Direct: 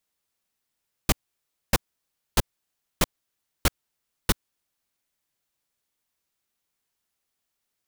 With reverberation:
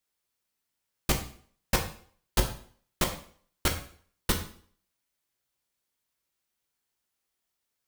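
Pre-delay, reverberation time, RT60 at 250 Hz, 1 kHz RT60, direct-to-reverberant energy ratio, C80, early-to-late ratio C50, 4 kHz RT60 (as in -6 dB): 5 ms, 0.50 s, 0.55 s, 0.50 s, 3.0 dB, 12.5 dB, 9.5 dB, 0.45 s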